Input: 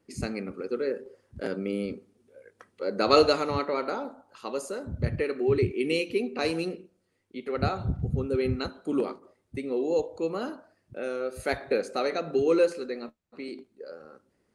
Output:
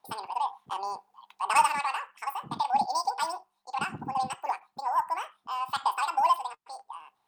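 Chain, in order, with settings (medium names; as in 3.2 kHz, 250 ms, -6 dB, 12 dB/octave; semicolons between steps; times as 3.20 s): resonant low shelf 340 Hz -7 dB, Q 3; saturation -8 dBFS, distortion -22 dB; speed mistake 7.5 ips tape played at 15 ips; trim -3.5 dB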